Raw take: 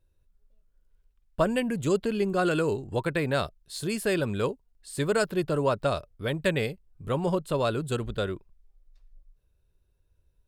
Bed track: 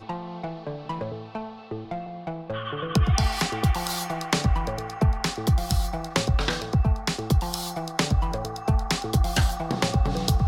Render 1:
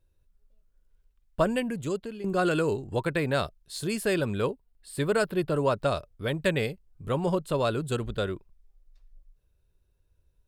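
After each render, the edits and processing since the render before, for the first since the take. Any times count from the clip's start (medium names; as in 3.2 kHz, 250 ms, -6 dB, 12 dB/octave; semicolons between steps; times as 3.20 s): 1.46–2.24 s: fade out, to -14.5 dB; 4.35–5.56 s: peaking EQ 6.3 kHz -9 dB 0.54 oct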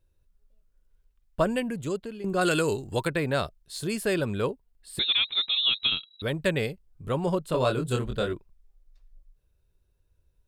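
2.41–3.08 s: treble shelf 2.6 kHz +11 dB; 4.99–6.22 s: frequency inversion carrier 3.9 kHz; 7.50–8.33 s: doubling 24 ms -3.5 dB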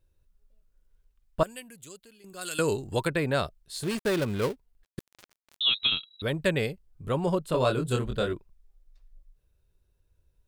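1.43–2.59 s: pre-emphasis filter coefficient 0.9; 3.83–5.61 s: dead-time distortion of 0.19 ms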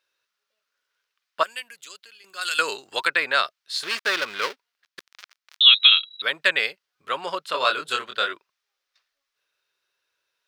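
Chebyshev high-pass 640 Hz, order 2; high-order bell 2.6 kHz +12.5 dB 2.7 oct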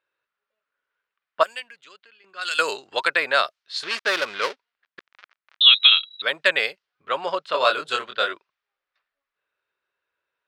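level-controlled noise filter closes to 2 kHz, open at -19.5 dBFS; dynamic bell 630 Hz, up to +6 dB, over -38 dBFS, Q 1.4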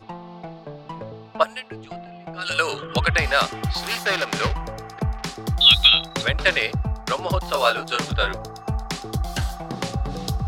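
add bed track -3.5 dB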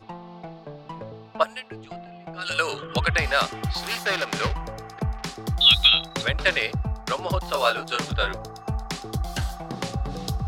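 trim -2.5 dB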